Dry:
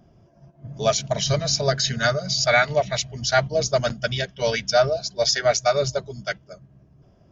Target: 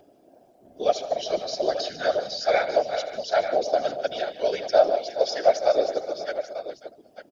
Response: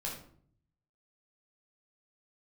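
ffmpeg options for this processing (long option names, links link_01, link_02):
-af "acompressor=mode=upward:threshold=-41dB:ratio=2.5,highpass=frequency=270:width=0.5412,highpass=frequency=270:width=1.3066,equalizer=frequency=290:width_type=q:width=4:gain=10,equalizer=frequency=440:width_type=q:width=4:gain=5,equalizer=frequency=620:width_type=q:width=4:gain=8,equalizer=frequency=1100:width_type=q:width=4:gain=-9,equalizer=frequency=2000:width_type=q:width=4:gain=-6,lowpass=frequency=5000:width=0.5412,lowpass=frequency=5000:width=1.3066,acrusher=bits=10:mix=0:aa=0.000001,aecho=1:1:79|149|183|413|542|896:0.15|0.188|0.119|0.211|0.133|0.266,afftfilt=real='hypot(re,im)*cos(2*PI*random(0))':imag='hypot(re,im)*sin(2*PI*random(1))':win_size=512:overlap=0.75,volume=-1.5dB"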